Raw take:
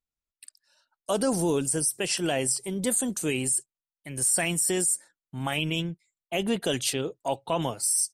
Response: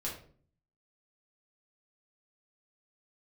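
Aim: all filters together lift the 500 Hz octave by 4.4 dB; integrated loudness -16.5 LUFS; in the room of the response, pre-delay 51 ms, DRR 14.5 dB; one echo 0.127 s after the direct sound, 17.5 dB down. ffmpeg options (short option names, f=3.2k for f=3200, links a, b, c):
-filter_complex "[0:a]equalizer=f=500:t=o:g=5.5,aecho=1:1:127:0.133,asplit=2[a][b];[1:a]atrim=start_sample=2205,adelay=51[c];[b][c]afir=irnorm=-1:irlink=0,volume=-16dB[d];[a][d]amix=inputs=2:normalize=0,volume=8.5dB"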